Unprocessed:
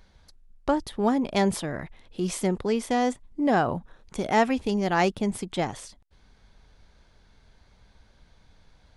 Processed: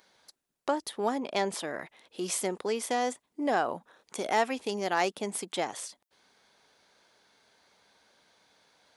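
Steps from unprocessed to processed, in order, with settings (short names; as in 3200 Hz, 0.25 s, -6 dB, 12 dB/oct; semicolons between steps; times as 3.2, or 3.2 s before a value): HPF 370 Hz 12 dB/oct; high shelf 7200 Hz +8 dB; in parallel at -1 dB: compressor 6:1, threshold -29 dBFS, peak gain reduction 12.5 dB; on the sum: hard clip -9 dBFS, distortion -33 dB; 1.19–1.6 air absorption 51 m; gain -6 dB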